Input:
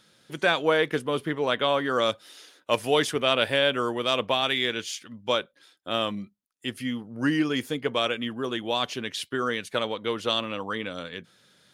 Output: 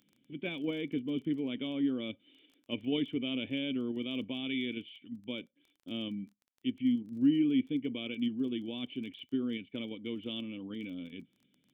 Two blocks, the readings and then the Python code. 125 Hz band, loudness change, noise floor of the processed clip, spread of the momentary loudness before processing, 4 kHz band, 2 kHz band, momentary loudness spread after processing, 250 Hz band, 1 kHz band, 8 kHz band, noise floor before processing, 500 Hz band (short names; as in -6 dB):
-7.5 dB, -8.5 dB, -76 dBFS, 13 LU, -13.5 dB, -16.0 dB, 13 LU, 0.0 dB, under -25 dB, under -30 dB, -67 dBFS, -15.5 dB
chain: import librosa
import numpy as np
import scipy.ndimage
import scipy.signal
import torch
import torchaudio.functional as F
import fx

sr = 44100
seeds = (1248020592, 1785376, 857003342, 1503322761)

p1 = fx.level_steps(x, sr, step_db=10)
p2 = x + F.gain(torch.from_numpy(p1), 2.0).numpy()
p3 = fx.formant_cascade(p2, sr, vowel='i')
p4 = fx.dmg_crackle(p3, sr, seeds[0], per_s=17.0, level_db=-47.0)
y = F.gain(torch.from_numpy(p4), -2.0).numpy()